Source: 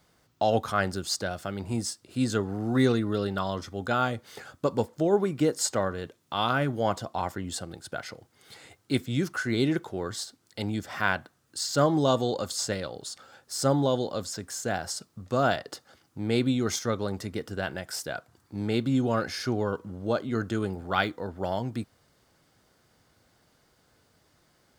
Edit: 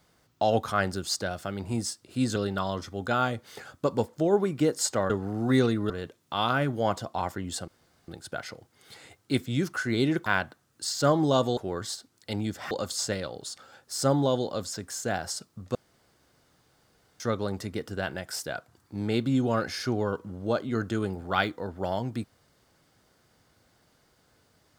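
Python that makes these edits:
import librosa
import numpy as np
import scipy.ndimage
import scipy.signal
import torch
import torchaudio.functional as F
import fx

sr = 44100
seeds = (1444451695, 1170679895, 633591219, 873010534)

y = fx.edit(x, sr, fx.move(start_s=2.36, length_s=0.8, to_s=5.9),
    fx.insert_room_tone(at_s=7.68, length_s=0.4),
    fx.move(start_s=9.86, length_s=1.14, to_s=12.31),
    fx.room_tone_fill(start_s=15.35, length_s=1.45), tone=tone)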